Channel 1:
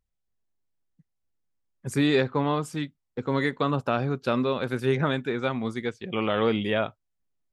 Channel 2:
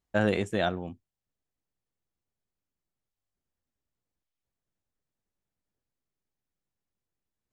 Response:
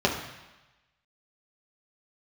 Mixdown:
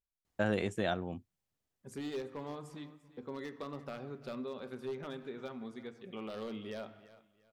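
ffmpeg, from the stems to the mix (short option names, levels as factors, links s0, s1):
-filter_complex "[0:a]aeval=exprs='0.158*(abs(mod(val(0)/0.158+3,4)-2)-1)':c=same,volume=0.15,asplit=3[s0][s1][s2];[s1]volume=0.0841[s3];[s2]volume=0.119[s4];[1:a]highpass=49,adelay=250,volume=1.33[s5];[2:a]atrim=start_sample=2205[s6];[s3][s6]afir=irnorm=-1:irlink=0[s7];[s4]aecho=0:1:344|688|1032|1376:1|0.29|0.0841|0.0244[s8];[s0][s5][s7][s8]amix=inputs=4:normalize=0,acompressor=threshold=0.00708:ratio=1.5"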